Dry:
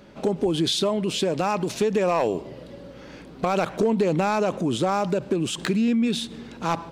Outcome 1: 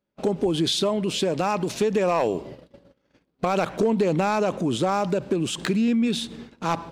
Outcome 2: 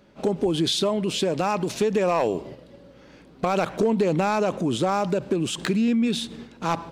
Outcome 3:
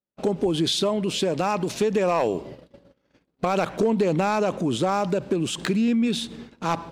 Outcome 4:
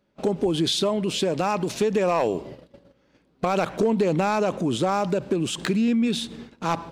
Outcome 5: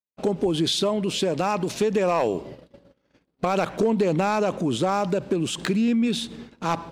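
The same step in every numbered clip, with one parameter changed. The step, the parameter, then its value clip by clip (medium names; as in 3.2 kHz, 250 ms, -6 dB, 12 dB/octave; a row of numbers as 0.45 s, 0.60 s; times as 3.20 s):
gate, range: -33 dB, -7 dB, -46 dB, -21 dB, -59 dB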